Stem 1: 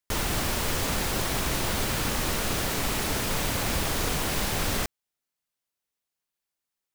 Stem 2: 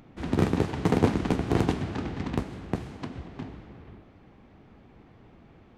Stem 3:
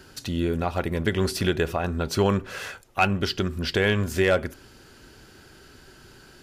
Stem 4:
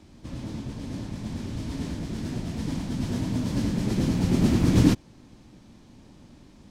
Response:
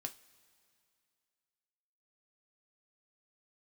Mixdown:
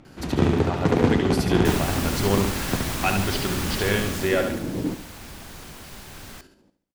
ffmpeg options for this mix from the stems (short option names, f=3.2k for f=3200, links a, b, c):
-filter_complex "[0:a]equalizer=f=460:t=o:w=0.77:g=-4.5,adelay=1550,volume=-2dB,afade=t=out:st=3.87:d=0.77:silence=0.237137,asplit=2[a][b];[b]volume=-17dB[c];[1:a]lowpass=8k,volume=2dB,asplit=2[d][e];[e]volume=-4.5dB[f];[2:a]adelay=50,volume=-3dB,asplit=2[g][h];[h]volume=-6dB[i];[3:a]equalizer=f=470:t=o:w=2.2:g=14,volume=-16.5dB,asplit=2[j][k];[k]volume=-12.5dB[l];[4:a]atrim=start_sample=2205[m];[c][m]afir=irnorm=-1:irlink=0[n];[f][i][l]amix=inputs=3:normalize=0,aecho=0:1:71|142|213|284|355|426:1|0.41|0.168|0.0689|0.0283|0.0116[o];[a][d][g][j][n][o]amix=inputs=6:normalize=0"